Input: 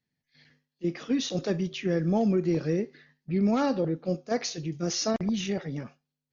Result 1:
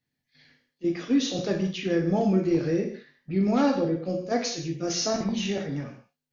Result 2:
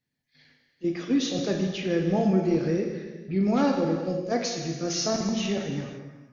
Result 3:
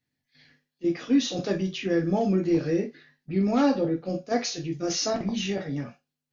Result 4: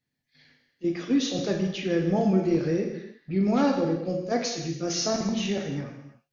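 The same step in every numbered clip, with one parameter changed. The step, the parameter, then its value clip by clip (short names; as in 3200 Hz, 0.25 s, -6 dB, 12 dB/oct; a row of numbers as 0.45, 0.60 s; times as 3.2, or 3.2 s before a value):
non-linear reverb, gate: 220, 540, 90, 360 ms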